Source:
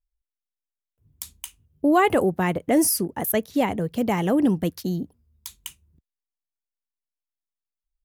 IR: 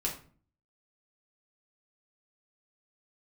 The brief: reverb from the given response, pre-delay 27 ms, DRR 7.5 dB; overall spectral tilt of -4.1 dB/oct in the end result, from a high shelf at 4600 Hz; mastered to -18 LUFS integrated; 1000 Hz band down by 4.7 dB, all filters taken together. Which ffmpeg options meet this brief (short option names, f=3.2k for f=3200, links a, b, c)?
-filter_complex "[0:a]equalizer=f=1k:t=o:g=-7,highshelf=f=4.6k:g=4,asplit=2[a][b];[1:a]atrim=start_sample=2205,adelay=27[c];[b][c]afir=irnorm=-1:irlink=0,volume=-11.5dB[d];[a][d]amix=inputs=2:normalize=0,volume=4dB"